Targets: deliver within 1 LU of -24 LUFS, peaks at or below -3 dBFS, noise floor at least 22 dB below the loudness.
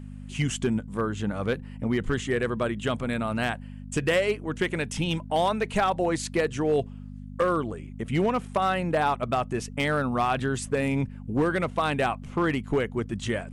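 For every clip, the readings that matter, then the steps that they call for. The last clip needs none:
clipped 0.7%; flat tops at -16.5 dBFS; hum 50 Hz; harmonics up to 250 Hz; hum level -38 dBFS; loudness -27.0 LUFS; peak -16.5 dBFS; loudness target -24.0 LUFS
-> clip repair -16.5 dBFS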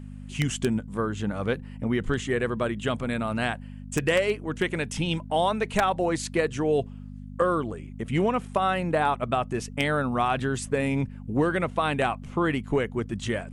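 clipped 0.0%; hum 50 Hz; harmonics up to 250 Hz; hum level -38 dBFS
-> de-hum 50 Hz, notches 5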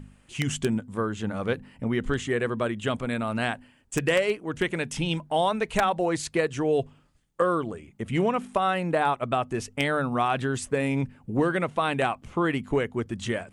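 hum none; loudness -27.0 LUFS; peak -7.0 dBFS; loudness target -24.0 LUFS
-> gain +3 dB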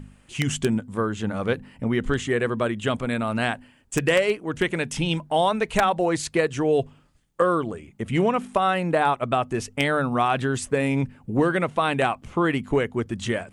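loudness -24.0 LUFS; peak -4.0 dBFS; noise floor -57 dBFS

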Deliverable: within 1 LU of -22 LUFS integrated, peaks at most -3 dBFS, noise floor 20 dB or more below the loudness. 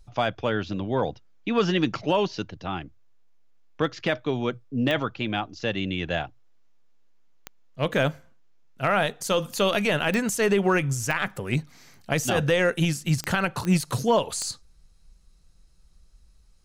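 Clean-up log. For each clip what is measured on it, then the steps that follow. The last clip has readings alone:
clicks 7; loudness -25.5 LUFS; peak -11.5 dBFS; loudness target -22.0 LUFS
-> de-click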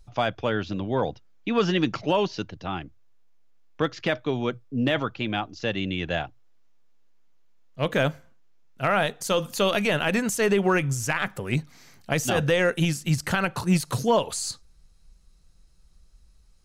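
clicks 0; loudness -25.5 LUFS; peak -11.5 dBFS; loudness target -22.0 LUFS
-> gain +3.5 dB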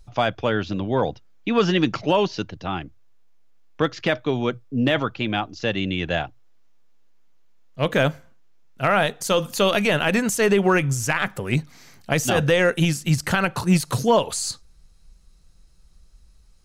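loudness -22.0 LUFS; peak -8.0 dBFS; noise floor -53 dBFS

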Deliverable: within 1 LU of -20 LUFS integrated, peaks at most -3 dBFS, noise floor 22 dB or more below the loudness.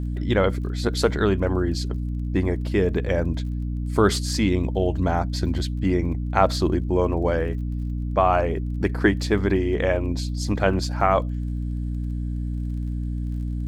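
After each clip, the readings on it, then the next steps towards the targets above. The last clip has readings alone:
ticks 28/s; hum 60 Hz; harmonics up to 300 Hz; hum level -24 dBFS; loudness -24.0 LUFS; peak -3.0 dBFS; loudness target -20.0 LUFS
-> de-click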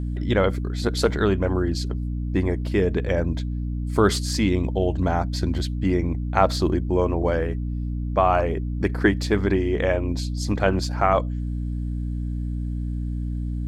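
ticks 0/s; hum 60 Hz; harmonics up to 300 Hz; hum level -24 dBFS
-> notches 60/120/180/240/300 Hz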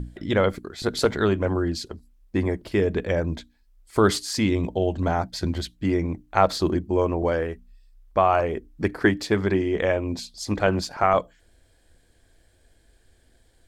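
hum none; loudness -24.5 LUFS; peak -3.5 dBFS; loudness target -20.0 LUFS
-> gain +4.5 dB; limiter -3 dBFS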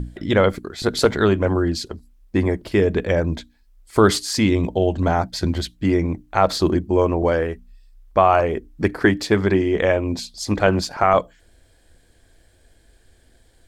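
loudness -20.0 LUFS; peak -3.0 dBFS; noise floor -57 dBFS

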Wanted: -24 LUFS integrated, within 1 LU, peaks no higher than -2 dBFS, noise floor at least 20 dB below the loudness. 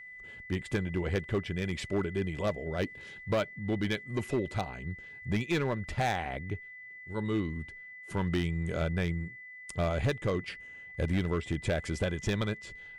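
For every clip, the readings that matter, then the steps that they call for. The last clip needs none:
clipped 1.5%; flat tops at -23.0 dBFS; steady tone 2000 Hz; tone level -45 dBFS; loudness -33.0 LUFS; peak -23.0 dBFS; loudness target -24.0 LUFS
-> clip repair -23 dBFS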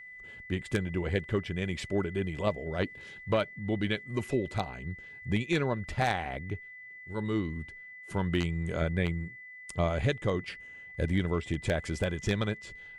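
clipped 0.0%; steady tone 2000 Hz; tone level -45 dBFS
-> notch 2000 Hz, Q 30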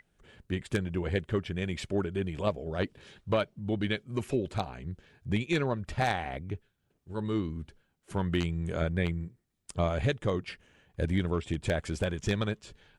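steady tone none; loudness -32.5 LUFS; peak -14.0 dBFS; loudness target -24.0 LUFS
-> gain +8.5 dB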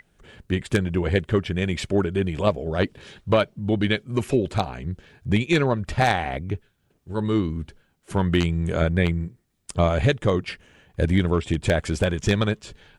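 loudness -24.0 LUFS; peak -5.5 dBFS; noise floor -67 dBFS

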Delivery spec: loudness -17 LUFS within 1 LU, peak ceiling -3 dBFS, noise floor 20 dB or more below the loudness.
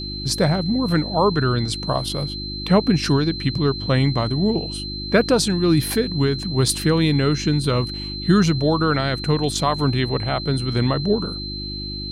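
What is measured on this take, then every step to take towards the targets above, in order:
hum 50 Hz; harmonics up to 350 Hz; hum level -30 dBFS; steady tone 4100 Hz; tone level -30 dBFS; loudness -20.5 LUFS; peak -5.5 dBFS; loudness target -17.0 LUFS
-> de-hum 50 Hz, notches 7; notch 4100 Hz, Q 30; gain +3.5 dB; limiter -3 dBFS

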